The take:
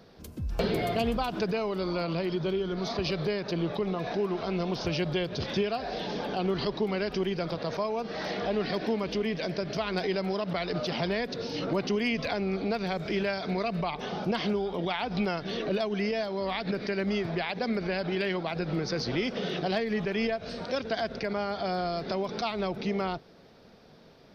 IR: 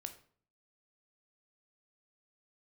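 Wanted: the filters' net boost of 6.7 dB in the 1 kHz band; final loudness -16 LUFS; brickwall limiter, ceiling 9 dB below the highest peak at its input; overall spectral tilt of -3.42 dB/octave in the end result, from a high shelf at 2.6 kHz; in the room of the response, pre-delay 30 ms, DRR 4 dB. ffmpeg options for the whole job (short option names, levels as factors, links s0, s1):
-filter_complex "[0:a]equalizer=f=1000:t=o:g=8.5,highshelf=f=2600:g=7.5,alimiter=limit=0.0944:level=0:latency=1,asplit=2[s0][s1];[1:a]atrim=start_sample=2205,adelay=30[s2];[s1][s2]afir=irnorm=-1:irlink=0,volume=0.944[s3];[s0][s3]amix=inputs=2:normalize=0,volume=4.22"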